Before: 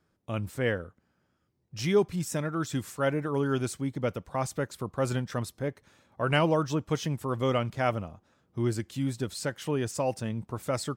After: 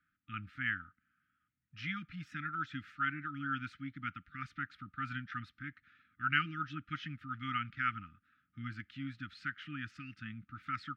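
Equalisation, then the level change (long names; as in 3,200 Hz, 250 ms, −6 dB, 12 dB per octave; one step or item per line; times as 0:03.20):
linear-phase brick-wall band-stop 310–1,200 Hz
high-frequency loss of the air 310 metres
three-way crossover with the lows and the highs turned down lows −17 dB, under 500 Hz, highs −12 dB, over 3,200 Hz
+3.0 dB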